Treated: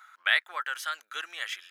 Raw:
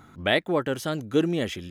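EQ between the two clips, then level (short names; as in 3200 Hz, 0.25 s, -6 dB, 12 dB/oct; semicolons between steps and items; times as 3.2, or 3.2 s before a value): ladder high-pass 1200 Hz, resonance 45%; +7.0 dB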